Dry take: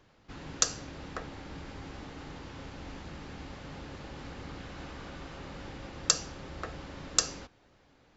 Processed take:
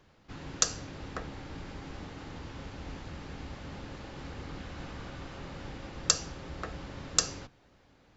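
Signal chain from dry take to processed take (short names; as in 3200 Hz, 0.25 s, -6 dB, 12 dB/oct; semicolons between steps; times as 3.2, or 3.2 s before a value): octaver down 1 oct, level -2 dB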